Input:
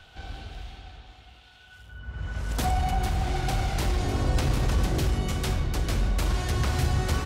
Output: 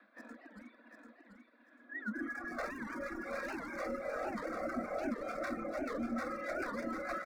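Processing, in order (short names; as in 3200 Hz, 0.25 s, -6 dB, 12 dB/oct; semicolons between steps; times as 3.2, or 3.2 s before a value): spectral limiter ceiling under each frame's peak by 14 dB; LPF 2600 Hz 24 dB/oct; compressor 3:1, threshold -35 dBFS, peak gain reduction 11.5 dB; bell 85 Hz -6 dB 0.26 oct; frequency shift +190 Hz; hard clip -34 dBFS, distortion -11 dB; reverb removal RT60 1.3 s; fixed phaser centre 600 Hz, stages 8; spectral noise reduction 14 dB; feedback echo 0.742 s, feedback 25%, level -6 dB; record warp 78 rpm, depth 250 cents; gain +6 dB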